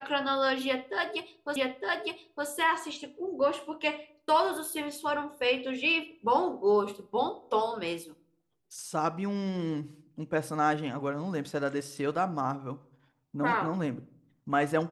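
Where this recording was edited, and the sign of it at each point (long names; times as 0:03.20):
0:01.56: the same again, the last 0.91 s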